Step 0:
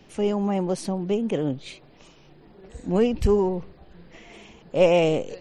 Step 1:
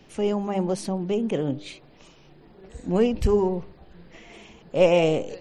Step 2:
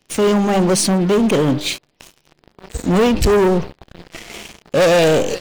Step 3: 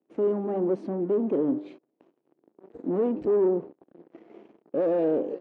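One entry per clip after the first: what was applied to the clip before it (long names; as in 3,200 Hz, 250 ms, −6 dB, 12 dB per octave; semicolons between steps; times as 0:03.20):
hum removal 100.2 Hz, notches 10
high-shelf EQ 2,800 Hz +8.5 dB; leveller curve on the samples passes 5; level −4 dB
four-pole ladder band-pass 370 Hz, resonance 45%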